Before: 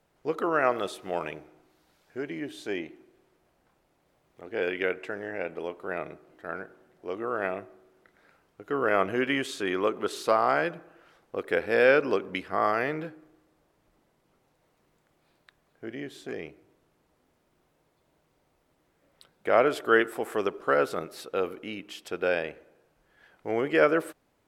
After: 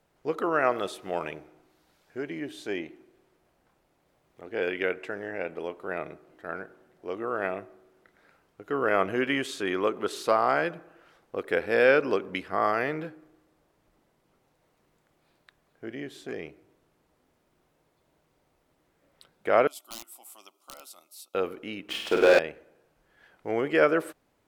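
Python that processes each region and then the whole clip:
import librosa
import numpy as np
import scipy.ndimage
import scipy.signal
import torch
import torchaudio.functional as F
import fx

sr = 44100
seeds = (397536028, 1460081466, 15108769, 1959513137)

y = fx.chain(x, sr, fx.differentiator(),
    fx.overflow_wrap(gain_db=29.0),
    fx.fixed_phaser(hz=450.0, stages=6), at=(19.67, 21.35))
y = fx.chain(y, sr, fx.bandpass_edges(low_hz=180.0, high_hz=3500.0),
    fx.leveller(passes=3),
    fx.room_flutter(wall_m=8.5, rt60_s=0.86), at=(21.89, 22.39))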